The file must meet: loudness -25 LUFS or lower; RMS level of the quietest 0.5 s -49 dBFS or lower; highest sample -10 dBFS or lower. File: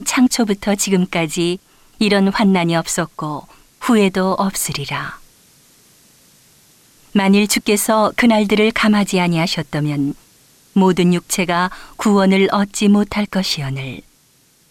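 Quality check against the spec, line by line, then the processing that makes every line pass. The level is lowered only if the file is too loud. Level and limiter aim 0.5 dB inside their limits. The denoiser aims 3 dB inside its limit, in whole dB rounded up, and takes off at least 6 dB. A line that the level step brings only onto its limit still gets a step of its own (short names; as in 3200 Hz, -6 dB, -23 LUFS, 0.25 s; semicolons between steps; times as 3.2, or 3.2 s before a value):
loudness -16.5 LUFS: fail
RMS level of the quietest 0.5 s -55 dBFS: OK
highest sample -4.5 dBFS: fail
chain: gain -9 dB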